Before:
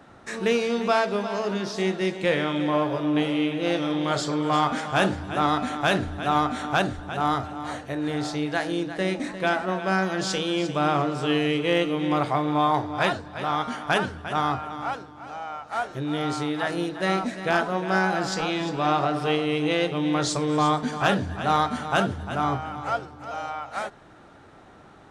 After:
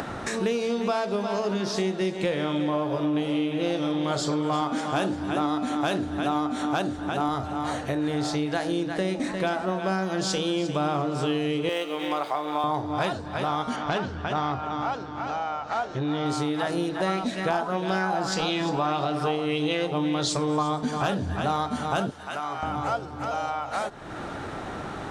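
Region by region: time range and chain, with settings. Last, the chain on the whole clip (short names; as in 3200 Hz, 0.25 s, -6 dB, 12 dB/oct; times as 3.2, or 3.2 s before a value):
4.61–7.29 HPF 160 Hz 6 dB/oct + bell 300 Hz +7 dB 0.37 oct
11.69–12.64 median filter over 5 samples + Bessel high-pass 640 Hz
13.76–16.26 LPF 6400 Hz 24 dB/oct + core saturation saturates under 840 Hz
16.99–20.63 short-mantissa float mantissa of 8-bit + LFO bell 1.7 Hz 810–3800 Hz +8 dB
22.1–22.63 HPF 1100 Hz 6 dB/oct + notch 3400 Hz, Q 20 + compressor 2:1, threshold -39 dBFS
whole clip: upward compressor, threshold -26 dBFS; dynamic EQ 1900 Hz, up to -6 dB, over -38 dBFS, Q 1.1; compressor, threshold -26 dBFS; gain +3.5 dB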